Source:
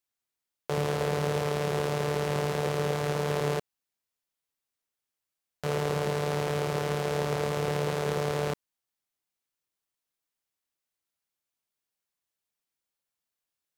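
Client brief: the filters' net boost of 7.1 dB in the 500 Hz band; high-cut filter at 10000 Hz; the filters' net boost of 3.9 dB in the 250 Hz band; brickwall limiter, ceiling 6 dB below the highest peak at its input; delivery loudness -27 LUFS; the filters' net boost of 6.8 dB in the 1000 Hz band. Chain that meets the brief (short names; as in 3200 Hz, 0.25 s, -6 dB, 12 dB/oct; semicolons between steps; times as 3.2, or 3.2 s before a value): LPF 10000 Hz; bell 250 Hz +5 dB; bell 500 Hz +5.5 dB; bell 1000 Hz +6.5 dB; gain -0.5 dB; limiter -16 dBFS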